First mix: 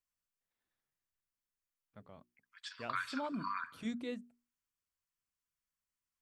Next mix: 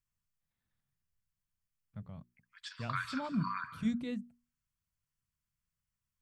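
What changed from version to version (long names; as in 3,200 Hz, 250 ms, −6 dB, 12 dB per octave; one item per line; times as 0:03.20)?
first voice: add low shelf with overshoot 230 Hz +13 dB, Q 1.5
second voice: send +9.5 dB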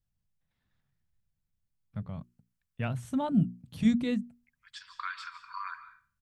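first voice +8.5 dB
second voice: entry +2.10 s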